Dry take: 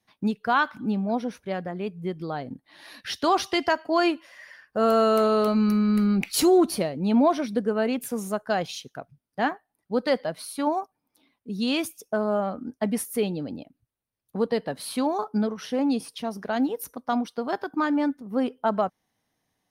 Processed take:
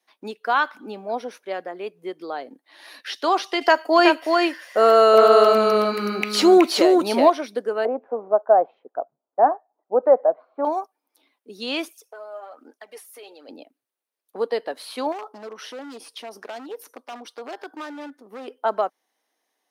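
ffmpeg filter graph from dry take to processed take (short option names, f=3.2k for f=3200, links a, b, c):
-filter_complex "[0:a]asettb=1/sr,asplit=3[a][b][c];[a]atrim=end=3.614[d];[b]atrim=start=3.61:end=7.3,asetpts=PTS-STARTPTS,afade=t=in:d=0.004:c=qsin,afade=t=out:st=3.686:d=0.004:c=qsin,highshelf=f=7k:g=9.5,acontrast=32,aecho=1:1:373:0.668,atrim=end_sample=162729[e];[c]atrim=start=7.296[f];[d][e]acrossfade=d=0.004:c1=hsin:c2=qsin[g];[g][f]acrossfade=d=0.004:c1=qsin:c2=hsin,asettb=1/sr,asplit=3[h][i][j];[h]atrim=end=7.854[k];[i]atrim=start=7.85:end=10.65,asetpts=PTS-STARTPTS,afade=t=in:d=0.004:c=qsin,afade=t=out:st=2.796:d=0.004:c=qsin,lowpass=f=1.2k:w=0.5412,lowpass=f=1.2k:w=1.3066,equalizer=f=670:t=o:w=0.92:g=10.5[l];[j]atrim=start=10.646[m];[k][l]acrossfade=d=0.004:c1=hsin:c2=qsin[n];[n][m]acrossfade=d=0.004:c1=qsin:c2=hsin,asettb=1/sr,asplit=3[o][p][q];[o]atrim=end=11.884[r];[p]atrim=start=11.88:end=13.49,asetpts=PTS-STARTPTS,afade=t=in:d=0.004:c=qsin,afade=t=out:st=1.606:d=0.004:c=qsin,highpass=510,acompressor=threshold=-43dB:ratio=3:attack=3.2:release=140:knee=1:detection=peak,aphaser=in_gain=1:out_gain=1:delay=3.4:decay=0.52:speed=1.2:type=sinusoidal[s];[q]atrim=start=13.486[t];[r][s]acrossfade=d=0.004:c1=hsin:c2=qsin[u];[u][t]acrossfade=d=0.004:c1=qsin:c2=hsin,asettb=1/sr,asplit=3[v][w][x];[v]atrim=end=15.124[y];[w]atrim=start=15.12:end=18.48,asetpts=PTS-STARTPTS,afade=t=in:d=0.004:c=qsin,afade=t=out:st=3.356:d=0.004:c=qsin,acompressor=threshold=-30dB:ratio=4:attack=3.2:release=140:knee=1:detection=peak,aeval=exprs='0.0376*(abs(mod(val(0)/0.0376+3,4)-2)-1)':c=same,highshelf=f=12k:g=-4.5[z];[x]atrim=start=18.476[aa];[y][z]acrossfade=d=0.004:c1=hsin:c2=qsin[ab];[ab][aa]acrossfade=d=0.004:c1=qsin:c2=hsin,highpass=f=340:w=0.5412,highpass=f=340:w=1.3066,acrossover=split=5000[ac][ad];[ad]acompressor=threshold=-45dB:ratio=4:attack=1:release=60[ae];[ac][ae]amix=inputs=2:normalize=0,volume=2dB"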